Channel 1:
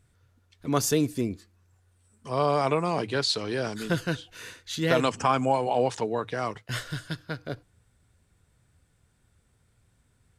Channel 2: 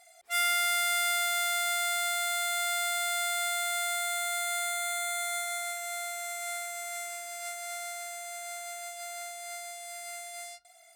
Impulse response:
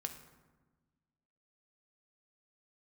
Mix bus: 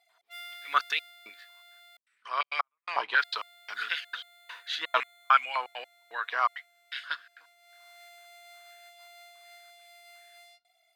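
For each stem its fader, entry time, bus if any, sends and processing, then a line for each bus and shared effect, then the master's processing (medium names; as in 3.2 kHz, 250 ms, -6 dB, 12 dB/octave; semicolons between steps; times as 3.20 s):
-0.5 dB, 0.00 s, no send, trance gate ".x...xxxx" 167 bpm -60 dB; step-sequenced high-pass 5.4 Hz 970–2200 Hz
-8.5 dB, 0.00 s, muted 1.97–3.14 s, no send, fifteen-band graphic EQ 630 Hz -4 dB, 1.6 kHz -7 dB, 16 kHz +11 dB; auto duck -15 dB, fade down 1.15 s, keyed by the first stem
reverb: none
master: high-pass 280 Hz 6 dB/octave; resonant high shelf 5.3 kHz -13 dB, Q 1.5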